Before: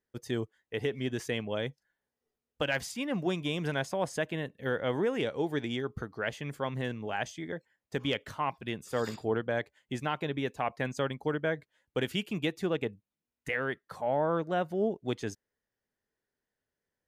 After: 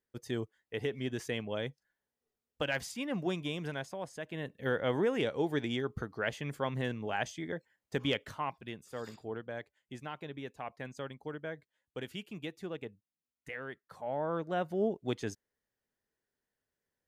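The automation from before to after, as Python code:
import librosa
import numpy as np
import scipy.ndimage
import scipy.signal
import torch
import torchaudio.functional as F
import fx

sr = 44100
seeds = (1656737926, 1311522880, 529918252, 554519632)

y = fx.gain(x, sr, db=fx.line((3.37, -3.0), (4.18, -11.0), (4.52, -0.5), (8.12, -0.5), (8.93, -10.0), (13.72, -10.0), (14.77, -1.5)))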